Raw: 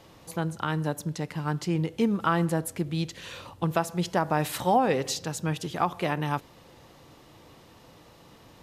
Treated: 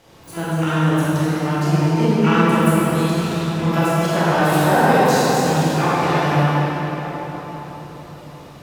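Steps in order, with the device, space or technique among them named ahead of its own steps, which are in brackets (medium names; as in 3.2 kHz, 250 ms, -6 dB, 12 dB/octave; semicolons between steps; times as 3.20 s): shimmer-style reverb (harmony voices +12 st -8 dB; reverberation RT60 4.9 s, pre-delay 21 ms, DRR -10 dB); trim -1 dB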